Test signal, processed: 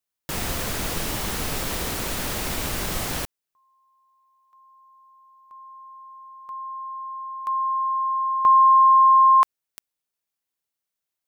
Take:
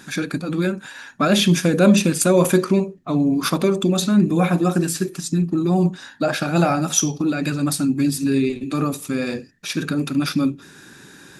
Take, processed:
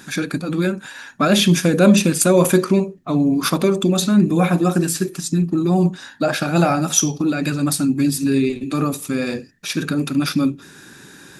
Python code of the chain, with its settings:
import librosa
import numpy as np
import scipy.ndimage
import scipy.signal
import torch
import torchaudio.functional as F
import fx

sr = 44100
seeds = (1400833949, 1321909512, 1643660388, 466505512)

y = fx.high_shelf(x, sr, hz=11000.0, db=4.0)
y = F.gain(torch.from_numpy(y), 1.5).numpy()